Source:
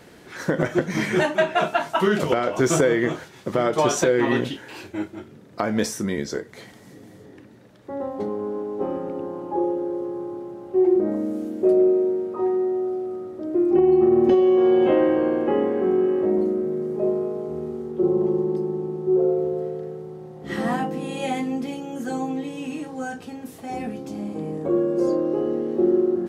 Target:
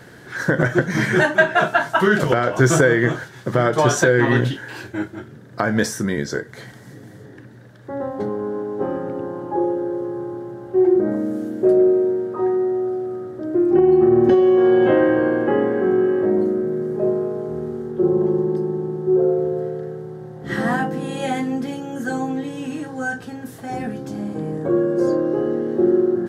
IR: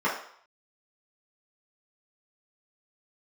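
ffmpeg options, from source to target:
-af "equalizer=frequency=125:width_type=o:width=0.33:gain=12,equalizer=frequency=1600:width_type=o:width=0.33:gain=10,equalizer=frequency=2500:width_type=o:width=0.33:gain=-5,volume=2.5dB"

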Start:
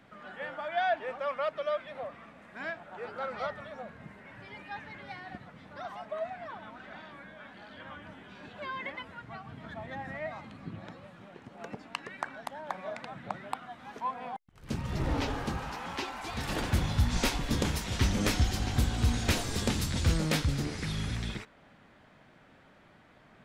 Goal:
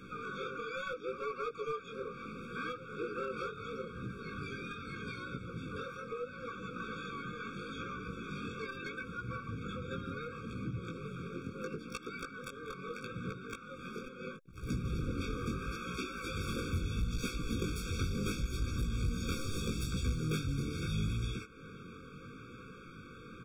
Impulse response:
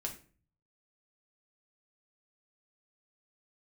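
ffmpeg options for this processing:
-filter_complex "[0:a]acompressor=threshold=-47dB:ratio=3,asplit=3[link_01][link_02][link_03];[link_02]asetrate=33038,aresample=44100,atempo=1.33484,volume=-3dB[link_04];[link_03]asetrate=88200,aresample=44100,atempo=0.5,volume=-12dB[link_05];[link_01][link_04][link_05]amix=inputs=3:normalize=0,flanger=delay=16:depth=6.9:speed=0.75,aeval=exprs='clip(val(0),-1,0.00841)':channel_layout=same,afftfilt=real='re*eq(mod(floor(b*sr/1024/540),2),0)':imag='im*eq(mod(floor(b*sr/1024/540),2),0)':win_size=1024:overlap=0.75,volume=11.5dB"

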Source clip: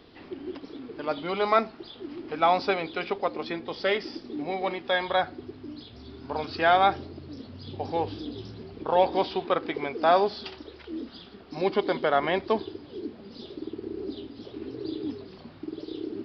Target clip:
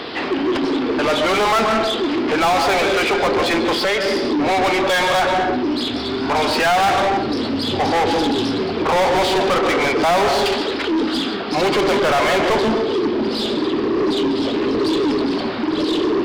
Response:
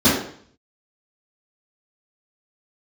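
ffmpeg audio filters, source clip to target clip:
-filter_complex "[0:a]asplit=2[link_01][link_02];[1:a]atrim=start_sample=2205,adelay=126[link_03];[link_02][link_03]afir=irnorm=-1:irlink=0,volume=-34dB[link_04];[link_01][link_04]amix=inputs=2:normalize=0,asettb=1/sr,asplit=3[link_05][link_06][link_07];[link_05]atrim=end=3.724[link_08];[link_06]atrim=start=3.72:end=4.41,asetpts=PTS-STARTPTS,afade=type=in:duration=0.004:curve=qsin,afade=type=out:start_time=0.686:duration=0.004:curve=qsin,acompressor=threshold=-31dB:ratio=10[link_09];[link_07]atrim=start=4.406[link_10];[link_08][link_09]acrossfade=duration=0.004:curve1=hsin:curve2=qsin[link_11];[link_11][link_10]acrossfade=duration=0.004:curve1=qsin:curve2=hsin,asplit=2[link_12][link_13];[link_13]highpass=frequency=720:poles=1,volume=38dB,asoftclip=type=tanh:threshold=-8dB[link_14];[link_12][link_14]amix=inputs=2:normalize=0,lowpass=frequency=3500:poles=1,volume=-6dB,volume=-1.5dB"

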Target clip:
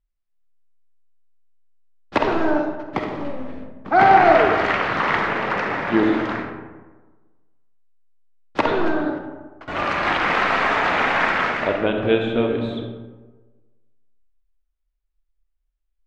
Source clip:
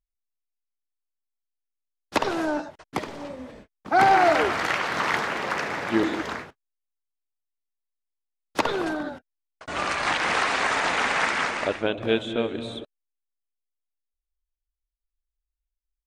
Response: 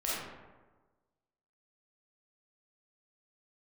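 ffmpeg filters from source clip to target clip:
-filter_complex "[0:a]lowpass=3000,asplit=2[link_01][link_02];[1:a]atrim=start_sample=2205,lowshelf=frequency=250:gain=7.5[link_03];[link_02][link_03]afir=irnorm=-1:irlink=0,volume=-7.5dB[link_04];[link_01][link_04]amix=inputs=2:normalize=0,volume=1dB"

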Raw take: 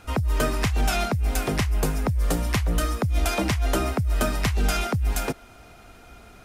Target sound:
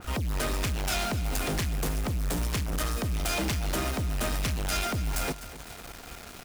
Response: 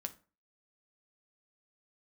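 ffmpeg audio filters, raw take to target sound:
-af "acompressor=mode=upward:threshold=-40dB:ratio=2.5,acrusher=bits=6:mix=0:aa=0.000001,asoftclip=type=hard:threshold=-27.5dB,aecho=1:1:251|502|753|1004|1255:0.178|0.096|0.0519|0.028|0.0151,adynamicequalizer=threshold=0.00794:dfrequency=2400:dqfactor=0.7:tfrequency=2400:tqfactor=0.7:attack=5:release=100:ratio=0.375:range=2:mode=boostabove:tftype=highshelf"

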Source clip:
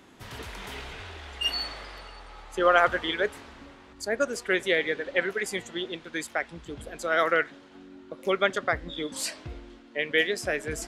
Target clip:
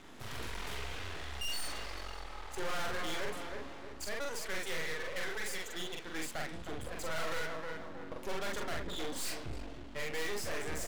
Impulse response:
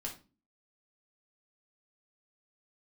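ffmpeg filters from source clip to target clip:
-filter_complex "[0:a]asettb=1/sr,asplit=3[link_01][link_02][link_03];[link_01]atrim=end=4.044[link_04];[link_02]atrim=start=4.04:end=6.04,asetpts=PTS-STARTPTS,afade=type=in:duration=0.004:curve=qsin,afade=type=out:start_time=1.996:duration=0.004:curve=qsin,highpass=frequency=770:poles=1[link_05];[link_03]atrim=start=6.036[link_06];[link_04][link_05]acrossfade=duration=0.004:curve1=hsin:curve2=qsin[link_07];[link_07][link_06]acrossfade=duration=0.004:curve1=qsin:curve2=hsin,asplit=2[link_08][link_09];[link_09]adelay=314,lowpass=frequency=1100:poles=1,volume=-13dB,asplit=2[link_10][link_11];[link_11]adelay=314,lowpass=frequency=1100:poles=1,volume=0.42,asplit=2[link_12][link_13];[link_13]adelay=314,lowpass=frequency=1100:poles=1,volume=0.42,asplit=2[link_14][link_15];[link_15]adelay=314,lowpass=frequency=1100:poles=1,volume=0.42[link_16];[link_08][link_10][link_12][link_14][link_16]amix=inputs=5:normalize=0,aeval=exprs='max(val(0),0)':channel_layout=same,asplit=2[link_17][link_18];[link_18]adelay=44,volume=-3dB[link_19];[link_17][link_19]amix=inputs=2:normalize=0,aeval=exprs='(tanh(28.2*val(0)+0.75)-tanh(0.75))/28.2':channel_layout=same,volume=8dB"

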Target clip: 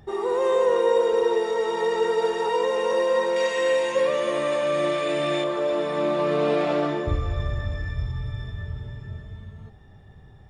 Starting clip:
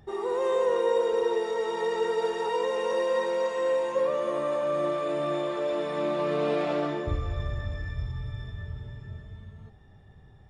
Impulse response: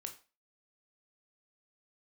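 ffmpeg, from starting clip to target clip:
-filter_complex "[0:a]asettb=1/sr,asplit=3[link_01][link_02][link_03];[link_01]atrim=end=3.364[link_04];[link_02]atrim=start=3.36:end=5.44,asetpts=PTS-STARTPTS,afade=type=in:duration=0.004:curve=qsin,afade=type=out:start_time=2.076:duration=0.004:curve=qsin,highshelf=frequency=1600:width_type=q:width=1.5:gain=6.5[link_05];[link_03]atrim=start=5.436[link_06];[link_04][link_05]acrossfade=duration=0.004:curve1=hsin:curve2=qsin[link_07];[link_07][link_06]acrossfade=duration=0.004:curve1=qsin:curve2=hsin,volume=4.5dB"

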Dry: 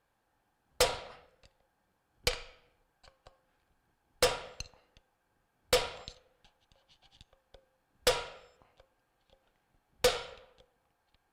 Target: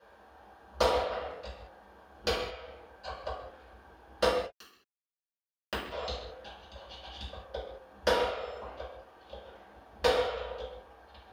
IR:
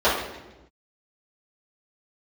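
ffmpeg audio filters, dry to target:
-filter_complex "[0:a]acompressor=threshold=-47dB:ratio=4,asplit=3[link_01][link_02][link_03];[link_01]afade=type=out:start_time=4.27:duration=0.02[link_04];[link_02]acrusher=bits=4:mix=0:aa=0.5,afade=type=in:start_time=4.27:duration=0.02,afade=type=out:start_time=5.9:duration=0.02[link_05];[link_03]afade=type=in:start_time=5.9:duration=0.02[link_06];[link_04][link_05][link_06]amix=inputs=3:normalize=0[link_07];[1:a]atrim=start_sample=2205,afade=type=out:start_time=0.28:duration=0.01,atrim=end_sample=12789[link_08];[link_07][link_08]afir=irnorm=-1:irlink=0"

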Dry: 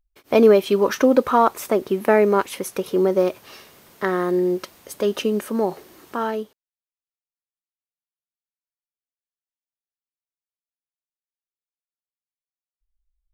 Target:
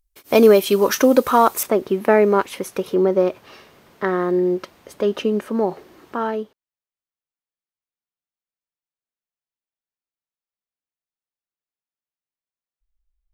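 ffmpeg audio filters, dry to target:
ffmpeg -i in.wav -af "asetnsamples=nb_out_samples=441:pad=0,asendcmd='1.63 equalizer g -5.5;2.94 equalizer g -13',equalizer=frequency=13000:width=0.3:gain=11,volume=1.5dB" out.wav

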